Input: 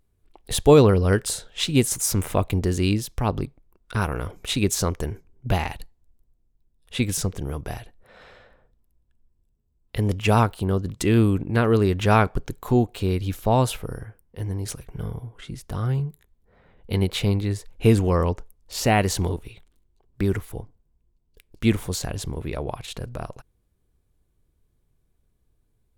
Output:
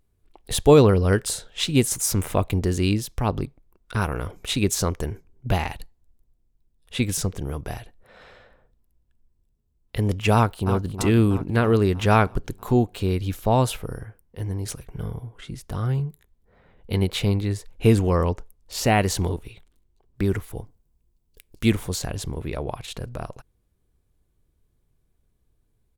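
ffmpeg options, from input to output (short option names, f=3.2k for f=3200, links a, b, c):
-filter_complex "[0:a]asplit=2[a][b];[b]afade=t=in:st=10.34:d=0.01,afade=t=out:st=10.9:d=0.01,aecho=0:1:320|640|960|1280|1600|1920|2240:0.316228|0.189737|0.113842|0.0683052|0.0409831|0.0245899|0.0147539[c];[a][c]amix=inputs=2:normalize=0,asettb=1/sr,asplit=3[d][e][f];[d]atrim=end=20.564[g];[e]atrim=start=20.56:end=21.71,asetpts=PTS-STARTPTS,afade=t=in:d=0.004:c=qsin,afade=t=out:st=1.146:d=0.004:c=qsin,highshelf=f=5.4k:g=8.5[h];[f]atrim=start=21.706[i];[g][h]acrossfade=d=0.004:c1=hsin:c2=qsin[j];[j][i]acrossfade=d=0.004:c1=qsin:c2=hsin"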